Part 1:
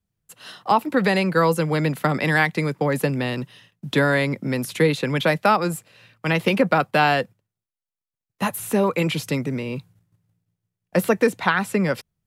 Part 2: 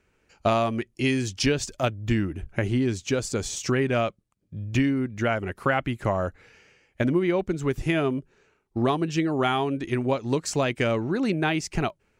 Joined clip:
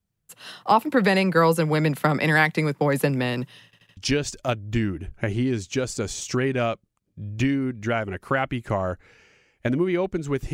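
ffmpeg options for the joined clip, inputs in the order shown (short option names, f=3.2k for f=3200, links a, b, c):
-filter_complex "[0:a]apad=whole_dur=10.53,atrim=end=10.53,asplit=4[a][b][c][d];[a]atrim=end=3.732[e];[b]atrim=start=3.648:end=3.732[f];[c]atrim=start=3.648:end=3.732[g];[d]atrim=start=3.648:end=3.732[h];[1:a]atrim=start=1.318:end=7.88[i];[e][f]acrossfade=d=0.004:c1=hsin:c2=hsin[j];[j][g]acrossfade=d=0.004:c1=hsin:c2=hsin[k];[k][h]acrossfade=d=0.004:c1=hsin:c2=hsin[l];[l][i]acrossfade=d=0.004:c1=hsin:c2=hsin"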